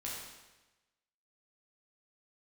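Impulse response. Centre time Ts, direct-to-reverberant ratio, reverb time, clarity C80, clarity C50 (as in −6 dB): 73 ms, −5.5 dB, 1.1 s, 2.5 dB, 0.0 dB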